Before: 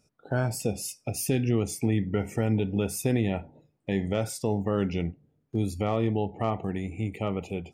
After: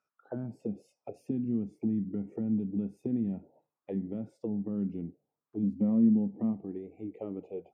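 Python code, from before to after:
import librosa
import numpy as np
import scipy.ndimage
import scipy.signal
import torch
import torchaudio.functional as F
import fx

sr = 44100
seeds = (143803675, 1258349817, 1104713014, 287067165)

y = fx.small_body(x, sr, hz=(230.0, 510.0, 980.0, 1900.0), ring_ms=45, db=fx.line((5.62, 12.0), (6.51, 8.0)), at=(5.62, 6.51), fade=0.02)
y = fx.auto_wah(y, sr, base_hz=220.0, top_hz=1300.0, q=3.6, full_db=-23.0, direction='down')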